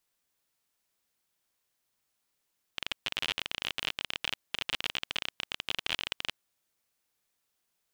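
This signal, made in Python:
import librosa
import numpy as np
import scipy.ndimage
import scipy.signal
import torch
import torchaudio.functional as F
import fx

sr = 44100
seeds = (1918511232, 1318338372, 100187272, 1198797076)

y = fx.geiger_clicks(sr, seeds[0], length_s=3.55, per_s=32.0, level_db=-14.0)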